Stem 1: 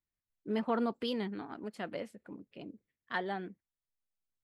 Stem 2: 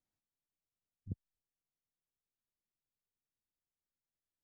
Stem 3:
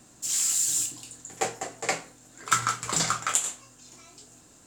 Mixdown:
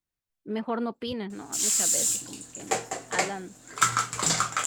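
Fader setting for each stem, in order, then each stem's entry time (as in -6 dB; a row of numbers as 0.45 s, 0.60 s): +2.0 dB, -4.5 dB, +1.0 dB; 0.00 s, 0.00 s, 1.30 s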